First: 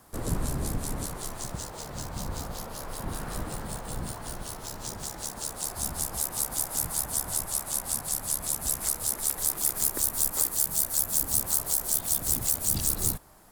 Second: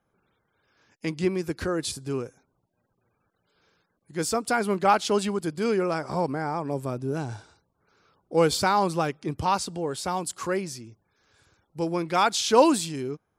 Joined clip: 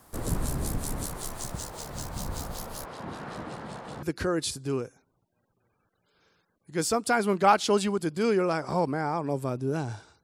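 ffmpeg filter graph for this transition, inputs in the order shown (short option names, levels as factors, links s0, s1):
-filter_complex "[0:a]asplit=3[s0][s1][s2];[s0]afade=t=out:st=2.84:d=0.02[s3];[s1]highpass=150,lowpass=3700,afade=t=in:st=2.84:d=0.02,afade=t=out:st=4.03:d=0.02[s4];[s2]afade=t=in:st=4.03:d=0.02[s5];[s3][s4][s5]amix=inputs=3:normalize=0,apad=whole_dur=10.23,atrim=end=10.23,atrim=end=4.032[s6];[1:a]atrim=start=1.438:end=7.64[s7];[s6][s7]acrossfade=d=0.004:c1=hsin:c2=hsin"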